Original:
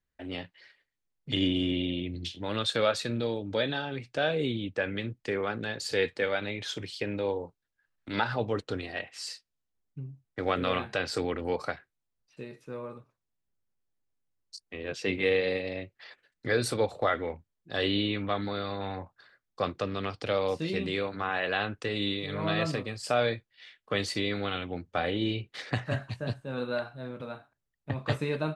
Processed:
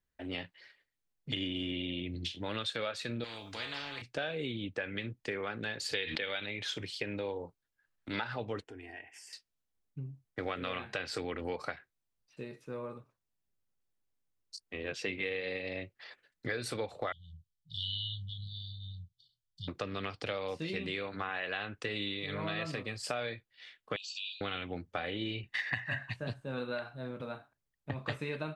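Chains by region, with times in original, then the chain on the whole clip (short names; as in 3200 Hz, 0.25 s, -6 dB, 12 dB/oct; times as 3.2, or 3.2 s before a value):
3.24–4.02 resonator 95 Hz, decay 0.28 s, harmonics odd, mix 80% + spectral compressor 4:1
5.94–6.46 synth low-pass 3500 Hz, resonance Q 3.9 + de-hum 78.21 Hz, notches 4 + backwards sustainer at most 32 dB/s
8.64–9.33 compressor 3:1, threshold -42 dBFS + fixed phaser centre 820 Hz, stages 8
17.12–19.68 brick-wall FIR band-stop 170–2900 Hz + high shelf 8700 Hz -10 dB
23.96–24.41 brick-wall FIR band-pass 2400–8000 Hz + compressor, threshold -36 dBFS
25.43–26.13 bell 1900 Hz +11.5 dB 1 oct + comb 1.1 ms, depth 59%
whole clip: dynamic EQ 2300 Hz, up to +6 dB, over -44 dBFS, Q 0.94; compressor 5:1, threshold -32 dBFS; gain -1.5 dB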